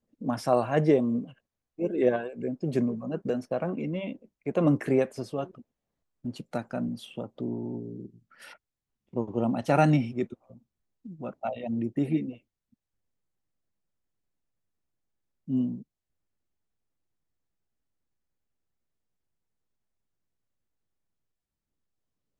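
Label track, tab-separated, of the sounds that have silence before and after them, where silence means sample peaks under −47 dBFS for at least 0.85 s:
15.480000	15.820000	sound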